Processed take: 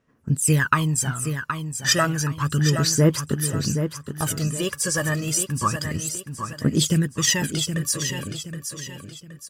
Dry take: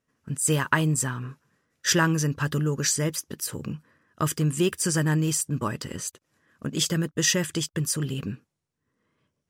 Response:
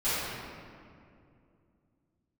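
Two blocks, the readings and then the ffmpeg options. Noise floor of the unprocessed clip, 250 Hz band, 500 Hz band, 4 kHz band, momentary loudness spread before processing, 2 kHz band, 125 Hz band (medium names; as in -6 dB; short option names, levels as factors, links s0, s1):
-81 dBFS, +3.0 dB, +2.5 dB, +4.0 dB, 13 LU, +3.0 dB, +4.0 dB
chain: -af "aphaser=in_gain=1:out_gain=1:delay=1.8:decay=0.72:speed=0.31:type=sinusoidal,aecho=1:1:771|1542|2313|3084:0.398|0.151|0.0575|0.0218"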